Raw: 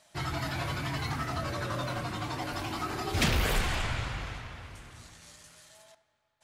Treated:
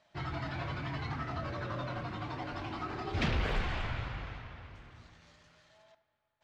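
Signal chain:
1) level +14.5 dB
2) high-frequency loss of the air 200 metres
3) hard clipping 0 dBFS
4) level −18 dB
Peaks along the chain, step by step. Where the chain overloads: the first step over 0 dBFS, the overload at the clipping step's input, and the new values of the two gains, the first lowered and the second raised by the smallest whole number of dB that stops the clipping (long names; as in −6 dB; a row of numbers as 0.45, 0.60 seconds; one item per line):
−2.0, −3.0, −3.0, −21.0 dBFS
no step passes full scale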